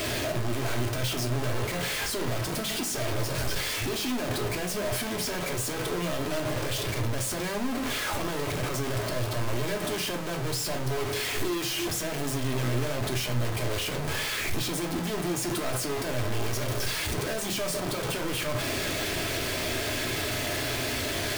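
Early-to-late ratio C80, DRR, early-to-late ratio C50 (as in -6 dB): 17.5 dB, 2.0 dB, 12.0 dB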